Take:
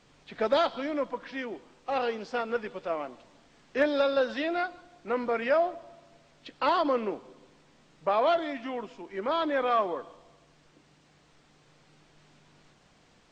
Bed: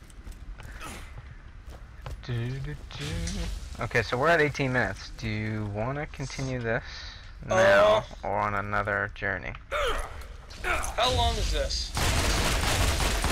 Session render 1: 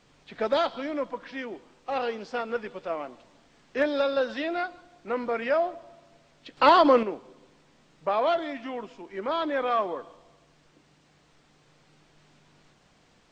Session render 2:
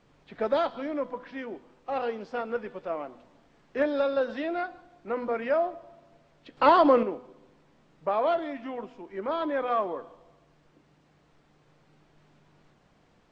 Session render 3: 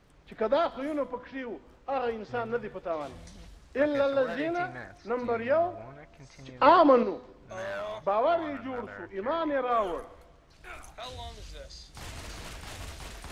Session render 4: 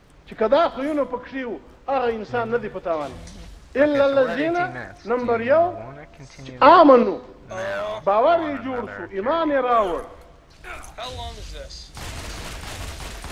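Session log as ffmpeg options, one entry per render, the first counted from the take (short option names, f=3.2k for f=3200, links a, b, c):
-filter_complex "[0:a]asplit=3[a][b][c];[a]atrim=end=6.572[d];[b]atrim=start=6.568:end=7.032,asetpts=PTS-STARTPTS,volume=8dB[e];[c]atrim=start=7.028[f];[d][e]acrossfade=d=0.004:c1=hsin:c2=hsin[g];[g][f]acrossfade=d=0.004:c1=hsin:c2=hsin"
-af "highshelf=f=2.5k:g=-11,bandreject=f=249.4:t=h:w=4,bandreject=f=498.8:t=h:w=4,bandreject=f=748.2:t=h:w=4,bandreject=f=997.6:t=h:w=4,bandreject=f=1.247k:t=h:w=4,bandreject=f=1.4964k:t=h:w=4,bandreject=f=1.7458k:t=h:w=4,bandreject=f=1.9952k:t=h:w=4,bandreject=f=2.2446k:t=h:w=4,bandreject=f=2.494k:t=h:w=4,bandreject=f=2.7434k:t=h:w=4,bandreject=f=2.9928k:t=h:w=4,bandreject=f=3.2422k:t=h:w=4,bandreject=f=3.4916k:t=h:w=4,bandreject=f=3.741k:t=h:w=4,bandreject=f=3.9904k:t=h:w=4,bandreject=f=4.2398k:t=h:w=4,bandreject=f=4.4892k:t=h:w=4,bandreject=f=4.7386k:t=h:w=4,bandreject=f=4.988k:t=h:w=4,bandreject=f=5.2374k:t=h:w=4,bandreject=f=5.4868k:t=h:w=4,bandreject=f=5.7362k:t=h:w=4,bandreject=f=5.9856k:t=h:w=4,bandreject=f=6.235k:t=h:w=4,bandreject=f=6.4844k:t=h:w=4,bandreject=f=6.7338k:t=h:w=4"
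-filter_complex "[1:a]volume=-16.5dB[a];[0:a][a]amix=inputs=2:normalize=0"
-af "volume=8.5dB,alimiter=limit=-1dB:level=0:latency=1"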